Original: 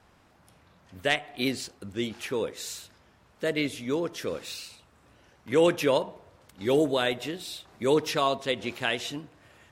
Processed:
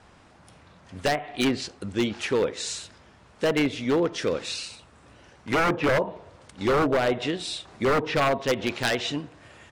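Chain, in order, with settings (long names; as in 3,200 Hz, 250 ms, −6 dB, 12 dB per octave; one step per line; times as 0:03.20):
downsampling to 22,050 Hz
treble cut that deepens with the level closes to 1,200 Hz, closed at −20.5 dBFS
wave folding −22.5 dBFS
level +6.5 dB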